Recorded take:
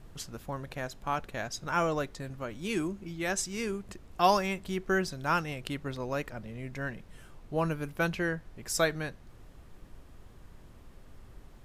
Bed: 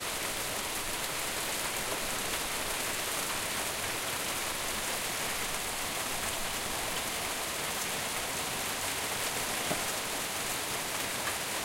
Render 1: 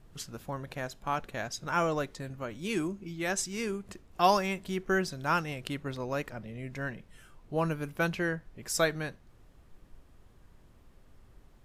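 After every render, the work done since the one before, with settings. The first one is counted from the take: noise print and reduce 6 dB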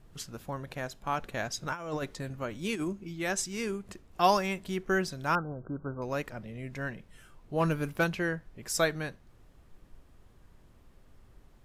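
1.21–2.93 negative-ratio compressor -32 dBFS, ratio -0.5; 5.35–6.02 brick-wall FIR low-pass 1600 Hz; 7.6–8.04 sample leveller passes 1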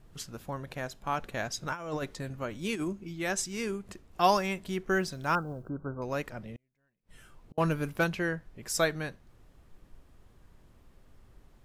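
4.95–5.69 companded quantiser 8-bit; 6.55–7.58 flipped gate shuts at -36 dBFS, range -40 dB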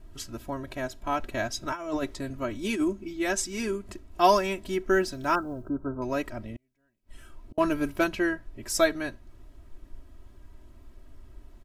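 low shelf 390 Hz +5 dB; comb 3.1 ms, depth 87%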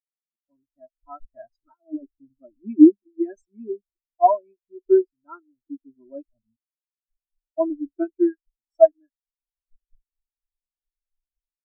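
AGC gain up to 12 dB; spectral expander 4:1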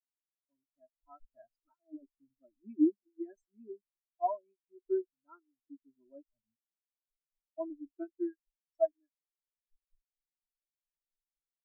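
gain -16 dB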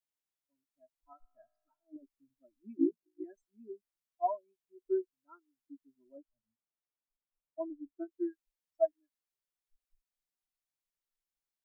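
1.13–1.96 resonator 56 Hz, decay 1.3 s, mix 40%; 2.77–3.24 ring modulator 28 Hz; 6.17–8.11 LPF 1500 Hz

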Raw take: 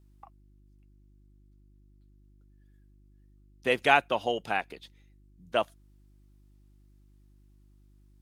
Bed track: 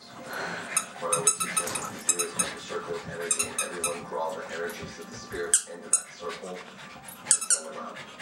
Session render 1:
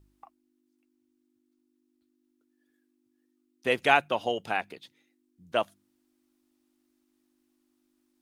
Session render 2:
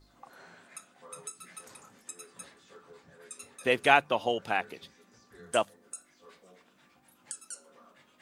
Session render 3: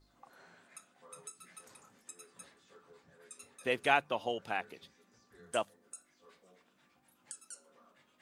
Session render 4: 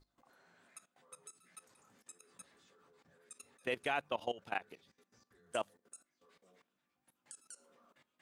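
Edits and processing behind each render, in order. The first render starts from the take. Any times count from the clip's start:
de-hum 50 Hz, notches 4
add bed track -20 dB
gain -6.5 dB
level quantiser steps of 17 dB

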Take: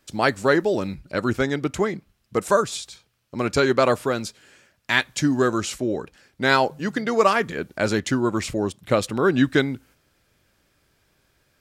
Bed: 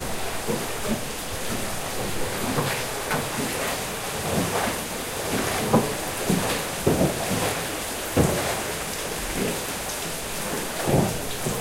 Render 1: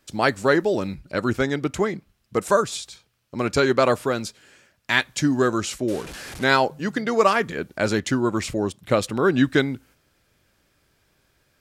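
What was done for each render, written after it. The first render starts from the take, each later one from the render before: 5.88–6.44 delta modulation 64 kbps, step -31 dBFS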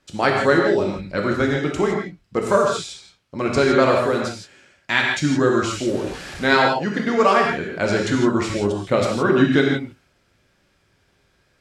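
air absorption 50 m; non-linear reverb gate 0.19 s flat, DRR -1 dB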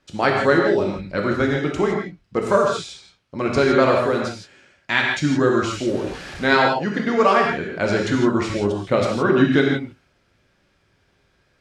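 high shelf 8500 Hz -9 dB; notch 7600 Hz, Q 25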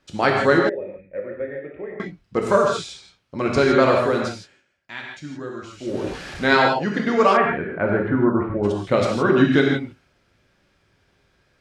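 0.69–2 vocal tract filter e; 4.35–6.06 dip -15 dB, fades 0.29 s; 7.36–8.63 LPF 2700 Hz -> 1200 Hz 24 dB/oct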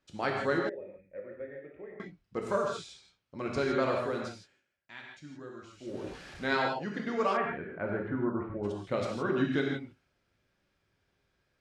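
gain -13 dB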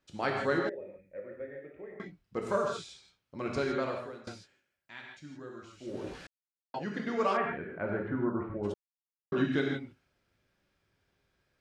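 3.51–4.27 fade out, to -19.5 dB; 6.27–6.74 mute; 8.74–9.32 mute

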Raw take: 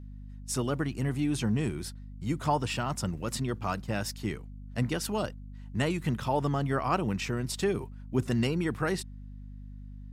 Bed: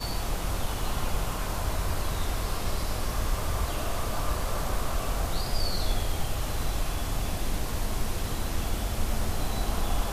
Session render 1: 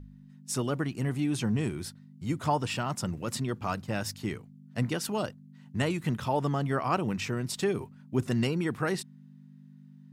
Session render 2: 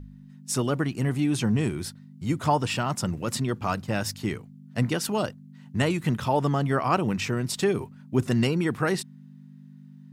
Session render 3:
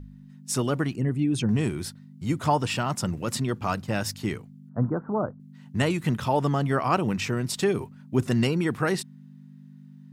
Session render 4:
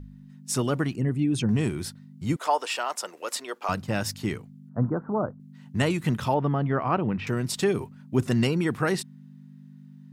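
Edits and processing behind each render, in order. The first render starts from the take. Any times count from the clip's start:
de-hum 50 Hz, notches 2
gain +4.5 dB
0.96–1.49 formant sharpening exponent 1.5; 4.69–5.4 steep low-pass 1400 Hz 48 dB/oct
2.36–3.69 HPF 440 Hz 24 dB/oct; 6.34–7.27 air absorption 400 m

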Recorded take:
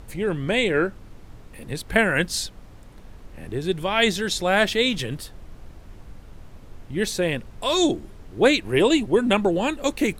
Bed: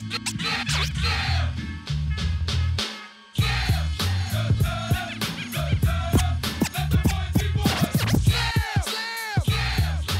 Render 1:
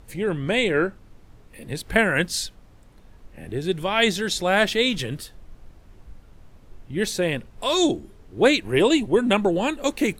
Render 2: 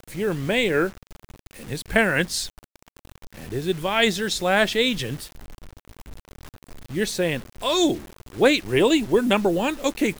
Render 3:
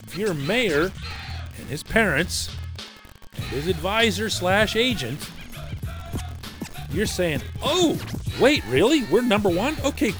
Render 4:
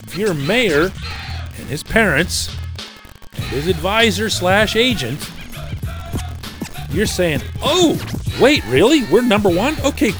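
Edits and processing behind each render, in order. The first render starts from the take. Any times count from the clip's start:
noise print and reduce 6 dB
vibrato 0.99 Hz 9.4 cents; bit-crush 7-bit
add bed -10 dB
gain +6.5 dB; limiter -1 dBFS, peak gain reduction 2.5 dB

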